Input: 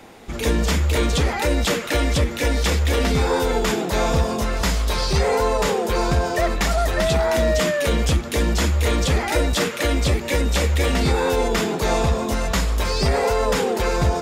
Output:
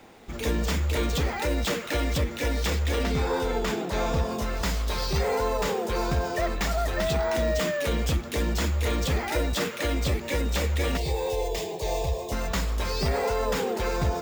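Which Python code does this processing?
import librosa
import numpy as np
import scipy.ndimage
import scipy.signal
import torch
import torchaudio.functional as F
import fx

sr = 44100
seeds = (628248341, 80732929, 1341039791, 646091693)

y = np.repeat(scipy.signal.resample_poly(x, 1, 2), 2)[:len(x)]
y = fx.high_shelf(y, sr, hz=6800.0, db=-5.0, at=(3.03, 4.32))
y = fx.fixed_phaser(y, sr, hz=570.0, stages=4, at=(10.97, 12.32))
y = y * librosa.db_to_amplitude(-6.5)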